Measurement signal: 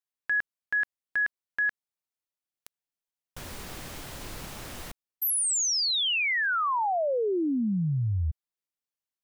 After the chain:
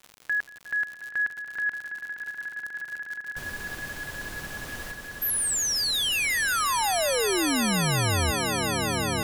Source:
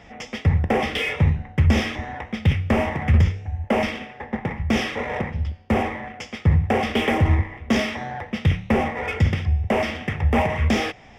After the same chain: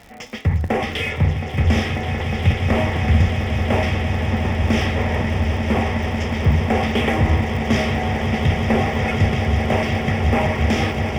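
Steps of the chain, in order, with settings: echo with a slow build-up 180 ms, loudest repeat 8, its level -11 dB; crackle 86 per s -33 dBFS

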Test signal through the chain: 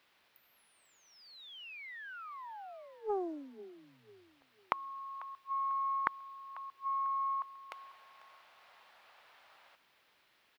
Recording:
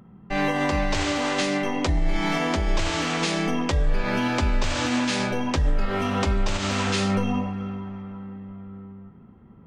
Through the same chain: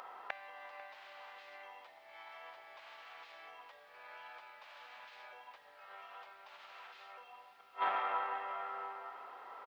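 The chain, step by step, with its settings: inverse Chebyshev high-pass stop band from 200 Hz, stop band 60 dB; treble shelf 4.4 kHz +8.5 dB; peak limiter -20.5 dBFS; inverted gate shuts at -34 dBFS, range -35 dB; added noise blue -68 dBFS; distance through air 390 m; feedback delay 495 ms, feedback 33%, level -17.5 dB; loudspeaker Doppler distortion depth 0.38 ms; trim +16 dB

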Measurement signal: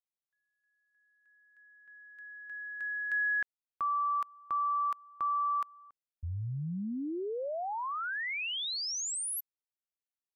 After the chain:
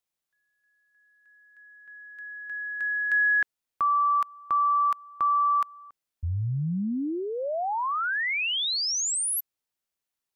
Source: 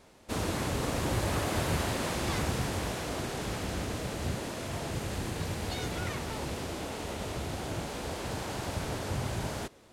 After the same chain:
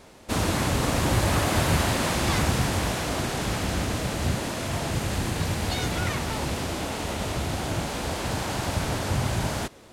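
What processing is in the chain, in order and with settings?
dynamic bell 430 Hz, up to -4 dB, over -48 dBFS, Q 1.9; trim +8 dB

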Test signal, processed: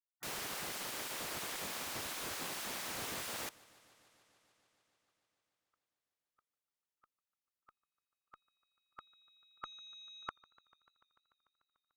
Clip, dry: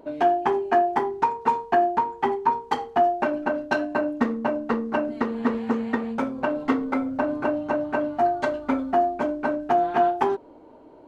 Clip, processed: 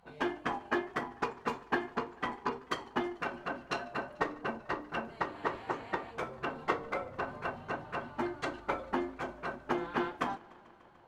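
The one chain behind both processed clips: Chebyshev shaper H 2 -37 dB, 7 -33 dB, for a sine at -9 dBFS; spectral gate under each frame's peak -10 dB weak; modulated delay 147 ms, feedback 80%, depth 72 cents, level -24 dB; trim -3.5 dB

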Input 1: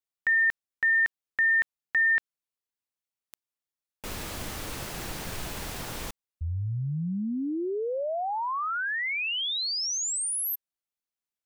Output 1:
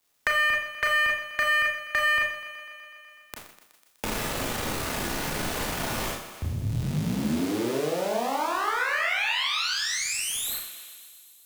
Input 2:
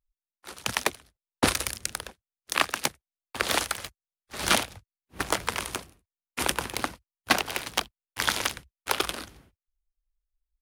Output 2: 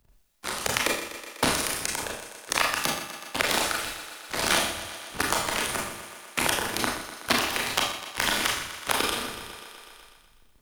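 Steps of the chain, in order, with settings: cycle switcher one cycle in 3, muted; on a send: thinning echo 124 ms, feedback 56%, high-pass 190 Hz, level -14 dB; on the sum: Schroeder reverb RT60 0.41 s, combs from 26 ms, DRR -1.5 dB; three bands compressed up and down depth 70%

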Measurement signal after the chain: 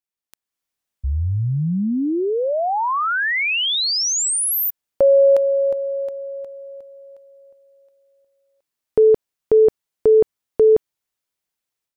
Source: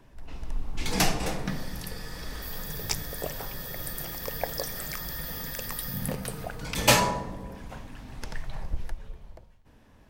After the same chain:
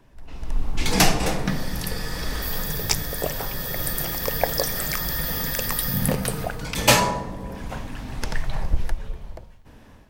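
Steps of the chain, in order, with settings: level rider gain up to 9.5 dB

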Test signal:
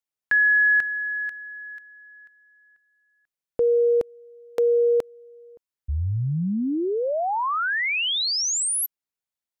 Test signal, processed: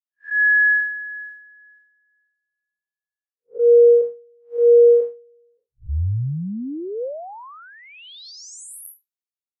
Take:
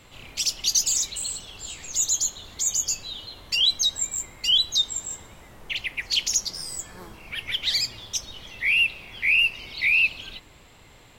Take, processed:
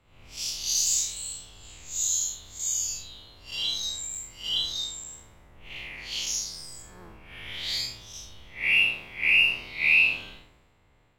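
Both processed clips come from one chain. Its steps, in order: spectral blur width 154 ms; dynamic bell 490 Hz, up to +4 dB, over -36 dBFS, Q 4.4; three bands expanded up and down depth 70%

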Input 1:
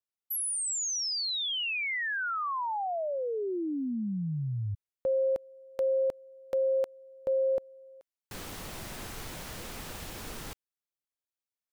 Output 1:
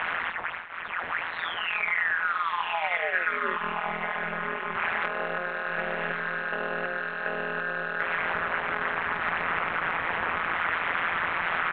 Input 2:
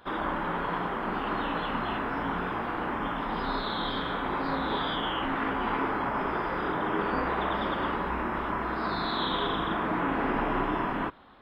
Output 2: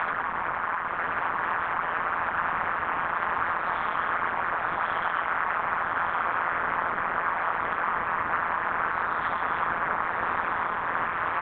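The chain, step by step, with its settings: one-bit delta coder 32 kbps, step -28.5 dBFS; low-pass 2.1 kHz 24 dB/octave; doubling 13 ms -2 dB; monotone LPC vocoder at 8 kHz 210 Hz; peaking EQ 1.4 kHz +13 dB 2.4 oct; compression 10:1, threshold -26 dBFS; echo that smears into a reverb 1158 ms, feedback 44%, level -4 dB; AM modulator 170 Hz, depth 95%; tilt EQ +2.5 dB/octave; trim +4 dB

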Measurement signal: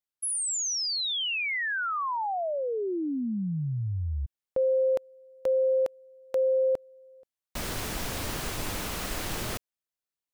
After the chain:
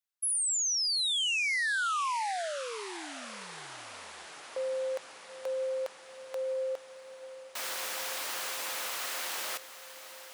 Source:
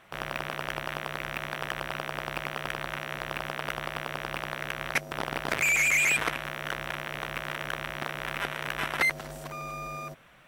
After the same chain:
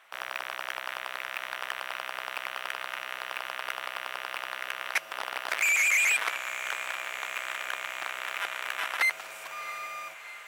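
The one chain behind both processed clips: high-pass 840 Hz 12 dB/octave; on a send: echo that smears into a reverb 733 ms, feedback 74%, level -14.5 dB

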